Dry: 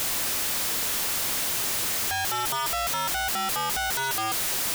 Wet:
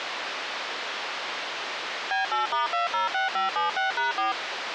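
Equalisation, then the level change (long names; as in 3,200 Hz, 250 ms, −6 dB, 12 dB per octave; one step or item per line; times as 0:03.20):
band-pass filter 490–4,700 Hz
high-frequency loss of the air 180 metres
+4.5 dB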